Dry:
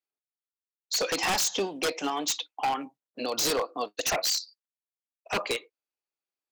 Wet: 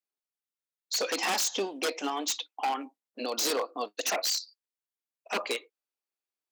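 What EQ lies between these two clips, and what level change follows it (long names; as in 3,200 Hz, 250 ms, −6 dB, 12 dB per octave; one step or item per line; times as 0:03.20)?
linear-phase brick-wall high-pass 190 Hz
−2.0 dB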